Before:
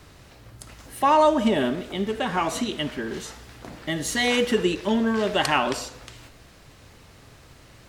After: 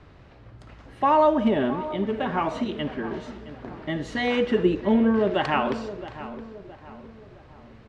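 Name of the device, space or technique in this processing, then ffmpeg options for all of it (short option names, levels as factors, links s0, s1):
phone in a pocket: -filter_complex "[0:a]asettb=1/sr,asplit=3[s0][s1][s2];[s0]atrim=end=4.634[s3];[s1]atrim=start=4.63:end=5.31,asetpts=PTS-STARTPTS,afade=t=in:d=0.004:c=qsin,afade=t=out:st=0.676:d=0.004:c=qsin,tiltshelf=f=970:g=3.5[s4];[s2]atrim=start=5.306[s5];[s3][s4]acrossfade=d=0.004:c1=hsin:c2=qsin[s6];[s6][s5]acrossfade=d=0.004:c1=qsin:c2=hsin,lowpass=3700,highshelf=f=2400:g=-9,asplit=2[s7][s8];[s8]adelay=667,lowpass=f=1900:p=1,volume=0.211,asplit=2[s9][s10];[s10]adelay=667,lowpass=f=1900:p=1,volume=0.45,asplit=2[s11][s12];[s12]adelay=667,lowpass=f=1900:p=1,volume=0.45,asplit=2[s13][s14];[s14]adelay=667,lowpass=f=1900:p=1,volume=0.45[s15];[s7][s9][s11][s13][s15]amix=inputs=5:normalize=0"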